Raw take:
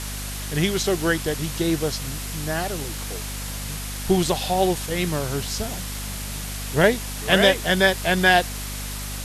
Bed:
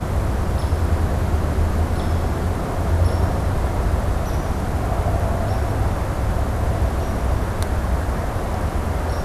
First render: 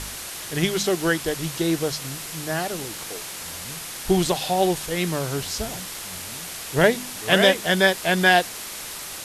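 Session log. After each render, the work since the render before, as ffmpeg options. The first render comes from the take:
-af "bandreject=f=50:t=h:w=4,bandreject=f=100:t=h:w=4,bandreject=f=150:t=h:w=4,bandreject=f=200:t=h:w=4,bandreject=f=250:t=h:w=4"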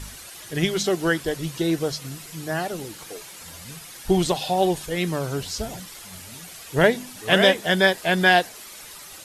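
-af "afftdn=nr=10:nf=-35"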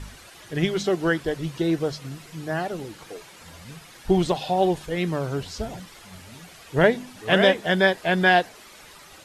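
-af "lowpass=f=2.6k:p=1"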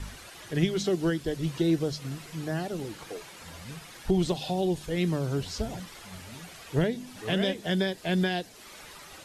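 -filter_complex "[0:a]alimiter=limit=-11.5dB:level=0:latency=1:release=327,acrossover=split=400|3000[a][b][c];[b]acompressor=threshold=-37dB:ratio=4[d];[a][d][c]amix=inputs=3:normalize=0"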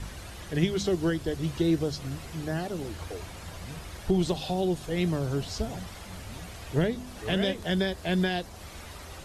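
-filter_complex "[1:a]volume=-23.5dB[a];[0:a][a]amix=inputs=2:normalize=0"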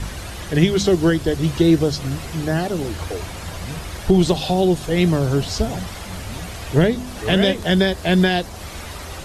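-af "volume=10.5dB,alimiter=limit=-3dB:level=0:latency=1"

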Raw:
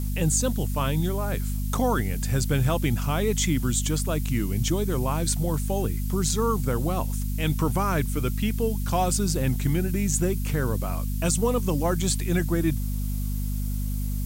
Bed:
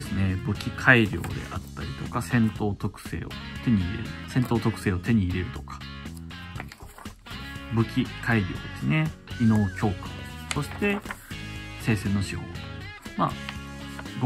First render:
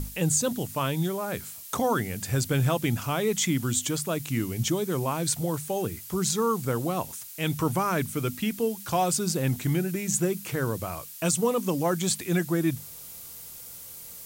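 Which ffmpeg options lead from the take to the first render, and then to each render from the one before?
-af "bandreject=f=50:t=h:w=6,bandreject=f=100:t=h:w=6,bandreject=f=150:t=h:w=6,bandreject=f=200:t=h:w=6,bandreject=f=250:t=h:w=6"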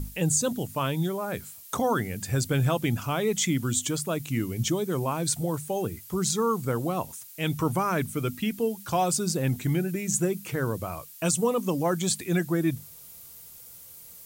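-af "afftdn=nr=6:nf=-43"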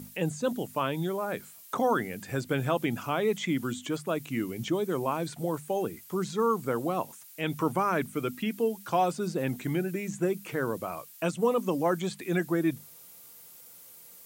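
-filter_complex "[0:a]highpass=210,acrossover=split=3000[a][b];[b]acompressor=threshold=-46dB:ratio=4:attack=1:release=60[c];[a][c]amix=inputs=2:normalize=0"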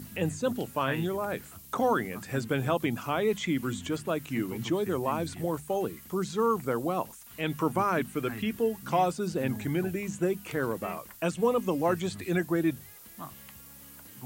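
-filter_complex "[1:a]volume=-18dB[a];[0:a][a]amix=inputs=2:normalize=0"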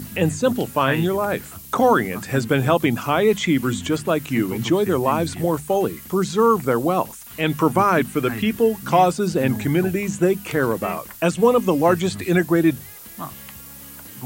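-af "volume=10dB"

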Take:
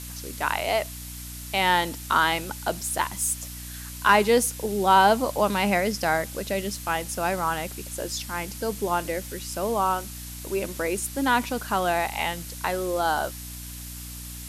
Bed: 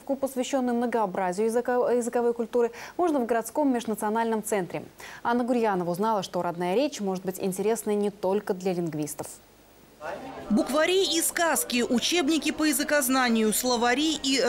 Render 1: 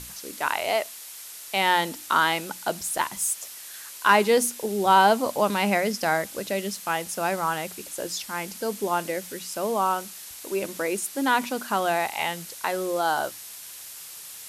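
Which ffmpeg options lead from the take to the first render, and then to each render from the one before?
-af "bandreject=f=60:t=h:w=6,bandreject=f=120:t=h:w=6,bandreject=f=180:t=h:w=6,bandreject=f=240:t=h:w=6,bandreject=f=300:t=h:w=6"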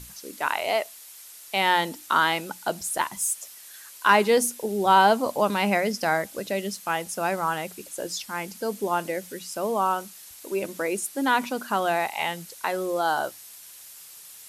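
-af "afftdn=nr=6:nf=-41"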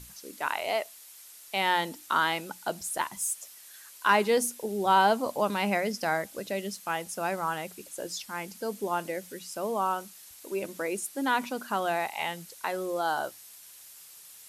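-af "volume=-4.5dB"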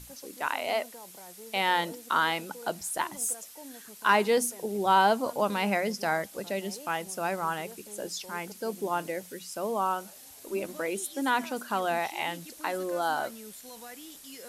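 -filter_complex "[1:a]volume=-23dB[a];[0:a][a]amix=inputs=2:normalize=0"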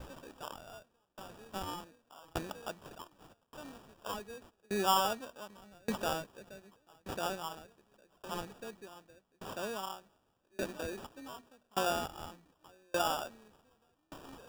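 -af "acrusher=samples=21:mix=1:aa=0.000001,aeval=exprs='val(0)*pow(10,-35*if(lt(mod(0.85*n/s,1),2*abs(0.85)/1000),1-mod(0.85*n/s,1)/(2*abs(0.85)/1000),(mod(0.85*n/s,1)-2*abs(0.85)/1000)/(1-2*abs(0.85)/1000))/20)':c=same"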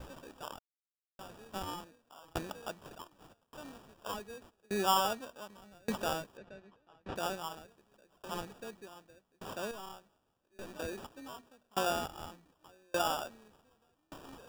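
-filter_complex "[0:a]asettb=1/sr,asplit=3[a][b][c];[a]atrim=end=6.374[d];[b]atrim=start=6.37:end=7.16,asetpts=PTS-STARTPTS,afade=t=in:d=0.004:c=qsin,afade=t=out:st=0.786:d=0.004:c=qsin,lowpass=3.3k[e];[c]atrim=start=7.156[f];[d][e]acrossfade=d=0.004:c1=hsin:c2=qsin[g];[g][f]acrossfade=d=0.004:c1=qsin:c2=hsin,asettb=1/sr,asplit=3[h][i][j];[h]atrim=end=9.714[k];[i]atrim=start=9.71:end=10.76,asetpts=PTS-STARTPTS,afade=t=in:d=0.004:c=qsin,afade=t=out:st=1.046:d=0.004:c=qsin,aeval=exprs='(tanh(141*val(0)+0.6)-tanh(0.6))/141':c=same[l];[j]atrim=start=10.756[m];[k][l]acrossfade=d=0.004:c1=hsin:c2=qsin[n];[n][m]acrossfade=d=0.004:c1=qsin:c2=hsin,asplit=3[o][p][q];[o]atrim=end=0.59,asetpts=PTS-STARTPTS,afade=t=out:st=0.586:d=0.004:c=hsin[r];[p]atrim=start=0.59:end=1.19,asetpts=PTS-STARTPTS,volume=0[s];[q]atrim=start=1.19,asetpts=PTS-STARTPTS,afade=t=in:d=0.004:c=hsin[t];[r][s][t]concat=n=3:v=0:a=1"

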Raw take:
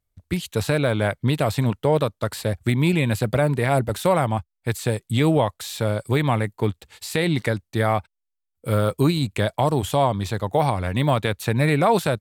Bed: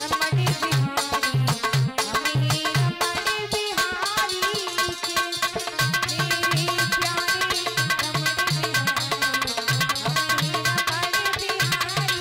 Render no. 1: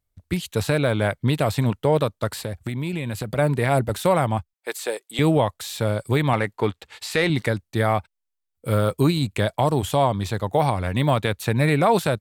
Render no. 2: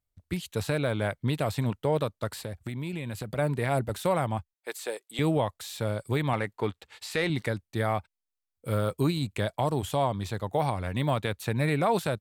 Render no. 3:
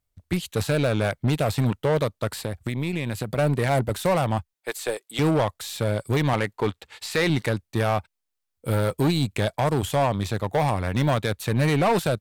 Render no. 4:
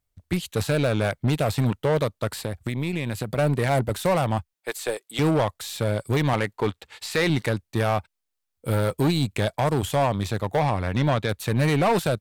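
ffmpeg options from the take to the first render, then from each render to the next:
-filter_complex "[0:a]asplit=3[a][b][c];[a]afade=t=out:st=2.43:d=0.02[d];[b]acompressor=threshold=-24dB:ratio=4:attack=3.2:release=140:knee=1:detection=peak,afade=t=in:st=2.43:d=0.02,afade=t=out:st=3.37:d=0.02[e];[c]afade=t=in:st=3.37:d=0.02[f];[d][e][f]amix=inputs=3:normalize=0,asettb=1/sr,asplit=3[g][h][i];[g]atrim=end=4.534[j];[h]atrim=start=4.53:end=5.19,asetpts=PTS-STARTPTS,afade=t=in:d=0.004:c=qsin,afade=t=out:st=0.656:d=0.004:c=qsin,highpass=f=370:w=0.5412,highpass=f=370:w=1.3066[k];[i]atrim=start=5.186[l];[j][k]acrossfade=d=0.004:c1=hsin:c2=qsin[m];[m][l]acrossfade=d=0.004:c1=qsin:c2=hsin,asettb=1/sr,asplit=3[n][o][p];[n]atrim=end=6.334[q];[o]atrim=start=6.33:end=7.3,asetpts=PTS-STARTPTS,afade=t=in:d=0.004:c=qsin,afade=t=out:st=0.966:d=0.004:c=qsin,asplit=2[r][s];[s]highpass=f=720:p=1,volume=12dB,asoftclip=type=tanh:threshold=-6.5dB[t];[r][t]amix=inputs=2:normalize=0,lowpass=f=2.8k:p=1,volume=-6dB[u];[p]atrim=start=7.296[v];[q][u]acrossfade=d=0.004:c1=hsin:c2=qsin[w];[w][v]acrossfade=d=0.004:c1=qsin:c2=hsin"
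-af "volume=-7dB"
-filter_complex "[0:a]aeval=exprs='0.211*(cos(1*acos(clip(val(0)/0.211,-1,1)))-cos(1*PI/2))+0.0376*(cos(5*acos(clip(val(0)/0.211,-1,1)))-cos(5*PI/2))+0.015*(cos(6*acos(clip(val(0)/0.211,-1,1)))-cos(6*PI/2))':c=same,asplit=2[a][b];[b]acrusher=bits=3:mix=0:aa=0.5,volume=-12dB[c];[a][c]amix=inputs=2:normalize=0"
-filter_complex "[0:a]asettb=1/sr,asplit=3[a][b][c];[a]atrim=end=10.594[d];[b]atrim=start=10.59:end=11.29,asetpts=PTS-STARTPTS,afade=t=in:d=0.004:c=qsin,afade=t=out:st=0.696:d=0.004:c=qsin,acrossover=split=6400[e][f];[f]acompressor=threshold=-56dB:ratio=4:attack=1:release=60[g];[e][g]amix=inputs=2:normalize=0[h];[c]atrim=start=11.286[i];[d][h]acrossfade=d=0.004:c1=hsin:c2=qsin[j];[j][i]acrossfade=d=0.004:c1=qsin:c2=hsin"

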